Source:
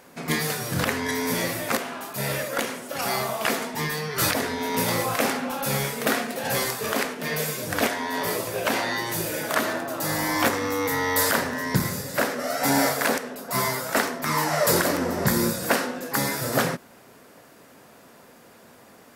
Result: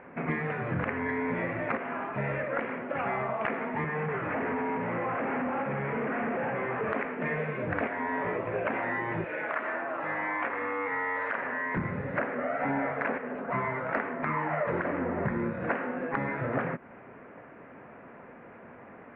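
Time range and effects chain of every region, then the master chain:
0:03.84–0:06.88: sign of each sample alone + high-pass filter 140 Hz + high-frequency loss of the air 420 metres
0:09.24–0:11.77: high-pass filter 850 Hz 6 dB per octave + downward compressor 1.5 to 1, threshold −28 dBFS
whole clip: Butterworth low-pass 2,400 Hz 48 dB per octave; downward compressor 4 to 1, threshold −31 dBFS; level +2.5 dB

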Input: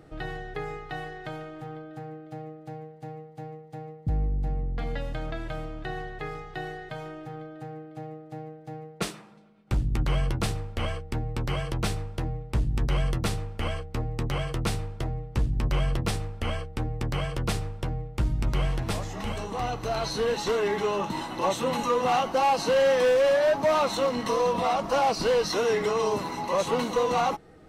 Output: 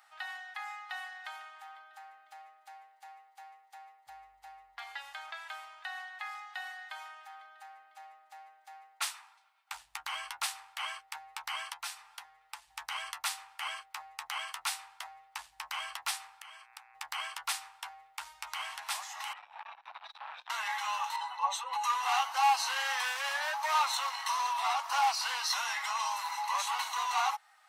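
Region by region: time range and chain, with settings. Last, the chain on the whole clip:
0:11.73–0:12.68: comb filter 5.8 ms, depth 45% + downward compressor 2 to 1, threshold −34 dBFS
0:16.40–0:16.94: downward compressor 10 to 1, threshold −38 dBFS + hum with harmonics 120 Hz, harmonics 22, −60 dBFS −1 dB per octave
0:19.33–0:20.50: frequency shifter −320 Hz + high-frequency loss of the air 440 metres + saturating transformer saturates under 530 Hz
0:21.16–0:21.84: expanding power law on the bin magnitudes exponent 1.5 + parametric band 480 Hz +8.5 dB 0.26 octaves
whole clip: elliptic high-pass filter 840 Hz, stop band 50 dB; high-shelf EQ 7,200 Hz +7 dB; level −1 dB

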